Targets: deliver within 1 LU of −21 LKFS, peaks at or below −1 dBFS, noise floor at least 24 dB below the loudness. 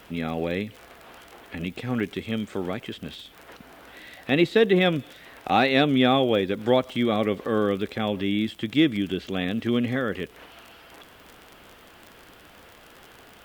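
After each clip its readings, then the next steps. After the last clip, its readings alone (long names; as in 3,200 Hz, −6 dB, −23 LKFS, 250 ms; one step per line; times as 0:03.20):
crackle rate 36 per second; integrated loudness −24.5 LKFS; sample peak −7.0 dBFS; target loudness −21.0 LKFS
→ click removal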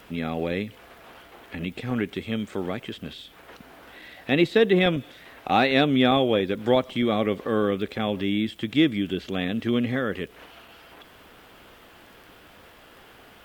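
crackle rate 0.74 per second; integrated loudness −24.5 LKFS; sample peak −7.0 dBFS; target loudness −21.0 LKFS
→ level +3.5 dB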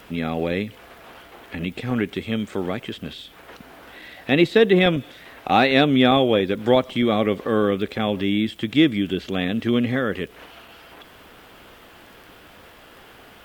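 integrated loudness −21.0 LKFS; sample peak −3.5 dBFS; background noise floor −48 dBFS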